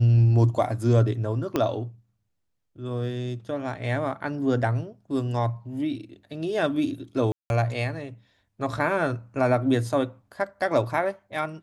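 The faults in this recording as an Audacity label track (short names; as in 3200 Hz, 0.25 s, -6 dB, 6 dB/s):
1.560000	1.560000	pop -11 dBFS
7.320000	7.500000	gap 0.181 s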